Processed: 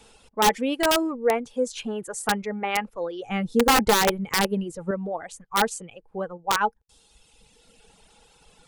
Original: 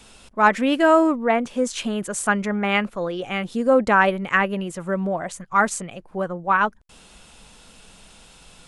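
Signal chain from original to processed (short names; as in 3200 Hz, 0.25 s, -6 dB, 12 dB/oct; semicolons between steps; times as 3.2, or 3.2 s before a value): reverb removal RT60 1.6 s; 3.29–4.91 low shelf 400 Hz +11 dB; wrapped overs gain 8.5 dB; small resonant body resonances 460/830 Hz, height 11 dB, ringing for 55 ms; gain -5.5 dB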